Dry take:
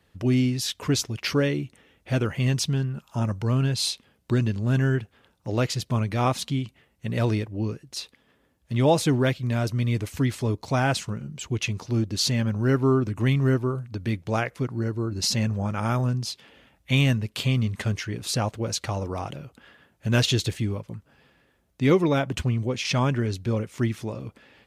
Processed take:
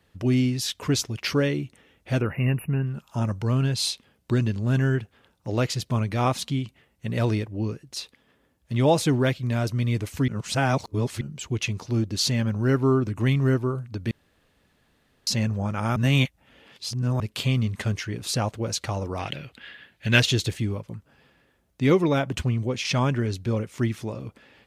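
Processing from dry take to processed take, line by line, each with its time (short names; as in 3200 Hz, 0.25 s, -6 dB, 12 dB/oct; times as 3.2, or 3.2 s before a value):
2.21–2.86 spectral delete 2900–10000 Hz
10.28–11.21 reverse
14.11–15.27 room tone
15.96–17.2 reverse
19.19–20.2 band shelf 2700 Hz +11.5 dB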